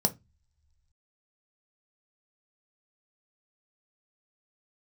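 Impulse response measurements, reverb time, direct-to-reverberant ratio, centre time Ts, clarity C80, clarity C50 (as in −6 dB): non-exponential decay, 6.5 dB, 5 ms, 30.0 dB, 20.5 dB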